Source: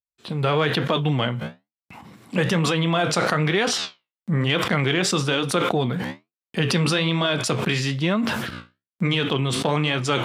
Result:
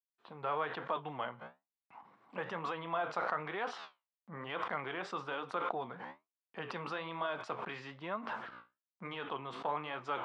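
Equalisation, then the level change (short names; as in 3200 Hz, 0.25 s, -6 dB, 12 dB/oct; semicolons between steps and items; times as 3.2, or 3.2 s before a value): band-pass 980 Hz, Q 1.8; air absorption 60 m; -7.5 dB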